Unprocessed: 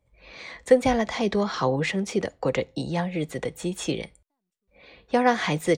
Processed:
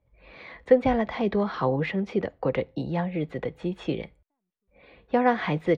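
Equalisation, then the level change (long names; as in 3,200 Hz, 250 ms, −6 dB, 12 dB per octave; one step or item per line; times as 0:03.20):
high-frequency loss of the air 350 metres
0.0 dB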